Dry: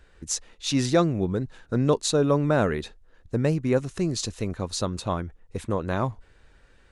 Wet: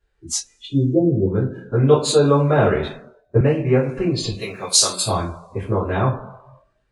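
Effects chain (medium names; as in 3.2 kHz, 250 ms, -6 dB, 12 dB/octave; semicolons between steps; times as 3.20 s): 0.65–1.26 s: steep low-pass 520 Hz 36 dB/octave; 4.39–5.05 s: tilt EQ +4.5 dB/octave; two-slope reverb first 0.32 s, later 1.6 s, from -17 dB, DRR -9.5 dB; spectral noise reduction 20 dB; 2.76–3.41 s: three bands expanded up and down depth 70%; trim -3.5 dB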